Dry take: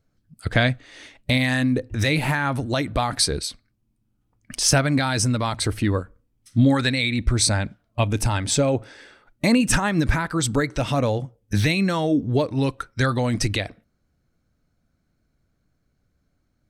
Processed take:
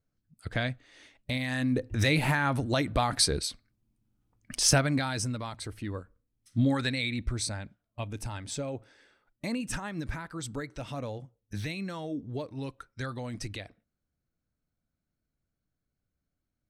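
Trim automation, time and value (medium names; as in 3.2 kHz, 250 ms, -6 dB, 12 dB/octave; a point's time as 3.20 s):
1.44 s -11.5 dB
1.84 s -4 dB
4.66 s -4 dB
5.71 s -16 dB
6.60 s -8.5 dB
7.10 s -8.5 dB
7.57 s -15 dB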